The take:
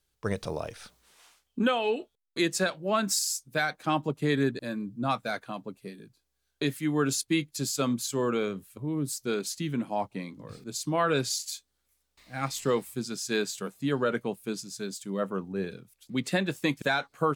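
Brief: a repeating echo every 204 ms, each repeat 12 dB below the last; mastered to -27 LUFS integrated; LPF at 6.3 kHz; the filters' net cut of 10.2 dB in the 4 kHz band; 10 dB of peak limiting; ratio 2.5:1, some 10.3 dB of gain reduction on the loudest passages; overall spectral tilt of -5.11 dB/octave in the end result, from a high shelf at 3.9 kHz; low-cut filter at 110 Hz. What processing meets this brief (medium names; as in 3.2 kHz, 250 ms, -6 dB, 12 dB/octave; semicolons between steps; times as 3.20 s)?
high-pass 110 Hz; low-pass 6.3 kHz; treble shelf 3.9 kHz -8.5 dB; peaking EQ 4 kHz -6.5 dB; compression 2.5:1, threshold -38 dBFS; peak limiter -32.5 dBFS; feedback delay 204 ms, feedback 25%, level -12 dB; trim +16 dB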